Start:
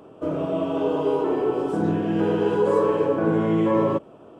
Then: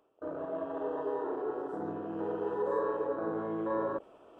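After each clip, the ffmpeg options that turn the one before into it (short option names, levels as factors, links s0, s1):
-af "afwtdn=0.0355,equalizer=f=150:t=o:w=2:g=-15,areverse,acompressor=mode=upward:threshold=0.0251:ratio=2.5,areverse,volume=0.422"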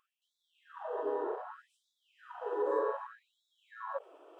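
-af "afftfilt=real='re*gte(b*sr/1024,260*pow(3400/260,0.5+0.5*sin(2*PI*0.65*pts/sr)))':imag='im*gte(b*sr/1024,260*pow(3400/260,0.5+0.5*sin(2*PI*0.65*pts/sr)))':win_size=1024:overlap=0.75"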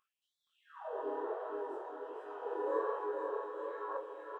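-filter_complex "[0:a]asplit=2[s0][s1];[s1]aecho=0:1:470|869.5|1209|1498|1743:0.631|0.398|0.251|0.158|0.1[s2];[s0][s2]amix=inputs=2:normalize=0,flanger=delay=19:depth=6.7:speed=1.3"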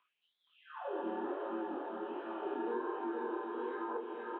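-filter_complex "[0:a]acrossover=split=620|1600[s0][s1][s2];[s0]acompressor=threshold=0.00794:ratio=4[s3];[s1]acompressor=threshold=0.00282:ratio=4[s4];[s2]acompressor=threshold=0.00126:ratio=4[s5];[s3][s4][s5]amix=inputs=3:normalize=0,highshelf=f=2000:g=9.5,highpass=f=240:t=q:w=0.5412,highpass=f=240:t=q:w=1.307,lowpass=f=3500:t=q:w=0.5176,lowpass=f=3500:t=q:w=0.7071,lowpass=f=3500:t=q:w=1.932,afreqshift=-78,volume=1.58"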